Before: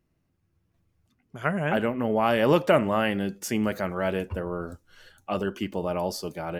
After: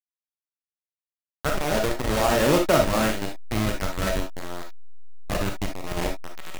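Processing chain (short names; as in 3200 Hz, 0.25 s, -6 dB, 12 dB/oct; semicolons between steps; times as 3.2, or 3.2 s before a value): 1.4–2.32 formant sharpening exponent 1.5; LPF 3100 Hz 12 dB/oct; bit-crush 4-bit; backlash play -22 dBFS; reverb, pre-delay 4 ms, DRR 2.5 dB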